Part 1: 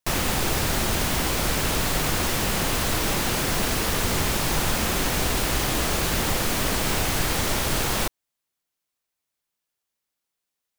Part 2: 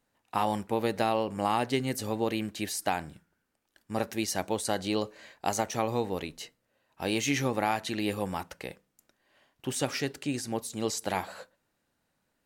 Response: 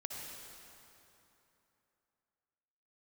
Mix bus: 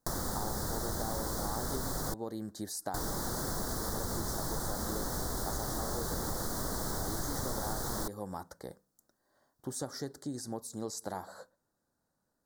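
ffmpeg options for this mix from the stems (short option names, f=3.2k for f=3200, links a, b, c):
-filter_complex "[0:a]volume=-2dB,asplit=3[a][b][c];[a]atrim=end=2.14,asetpts=PTS-STARTPTS,afade=t=out:st=2.136:d=0.004:c=hsin[d];[b]atrim=start=2.14:end=2.94,asetpts=PTS-STARTPTS,volume=0[e];[c]atrim=start=2.94,asetpts=PTS-STARTPTS,afade=t=in:d=0.004:c=hsin[f];[d][e][f]concat=n=3:v=0:a=1[g];[1:a]volume=-3.5dB[h];[g][h]amix=inputs=2:normalize=0,asuperstop=centerf=2600:order=4:qfactor=0.89,acompressor=threshold=-35dB:ratio=3"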